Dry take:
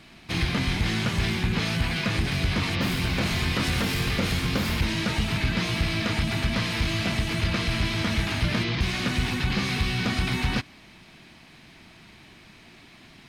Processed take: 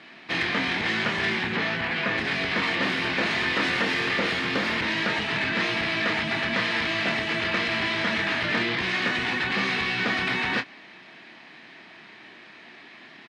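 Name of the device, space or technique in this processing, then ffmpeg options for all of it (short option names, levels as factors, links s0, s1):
intercom: -filter_complex "[0:a]highpass=310,lowpass=3600,equalizer=f=1800:t=o:w=0.23:g=7,asoftclip=type=tanh:threshold=0.126,asplit=2[s0][s1];[s1]adelay=26,volume=0.355[s2];[s0][s2]amix=inputs=2:normalize=0,asettb=1/sr,asplit=3[s3][s4][s5];[s3]atrim=end=1.564[s6];[s4]atrim=start=1.56:end=2.18,asetpts=PTS-STARTPTS,afade=t=in:d=0.004:c=qsin,afade=t=out:st=0.616:d=0.004:c=qsin,aemphasis=mode=reproduction:type=50kf[s7];[s5]atrim=start=2.176[s8];[s6][s7]acrossfade=d=0.004:c1=hsin:c2=qsin[s9];[s9][s8]acrossfade=d=0.004:c1=qsin:c2=hsin,volume=1.58"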